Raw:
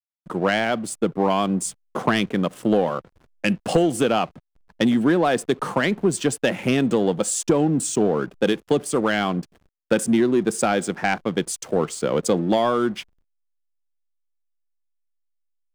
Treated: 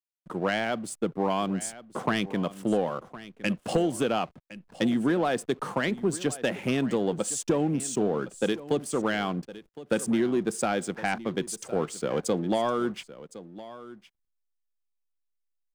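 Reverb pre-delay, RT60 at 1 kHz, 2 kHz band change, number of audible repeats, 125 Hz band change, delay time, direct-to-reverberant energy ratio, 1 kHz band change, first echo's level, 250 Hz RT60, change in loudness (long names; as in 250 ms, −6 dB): no reverb audible, no reverb audible, −6.5 dB, 1, −6.5 dB, 1,062 ms, no reverb audible, −6.5 dB, −16.5 dB, no reverb audible, −6.5 dB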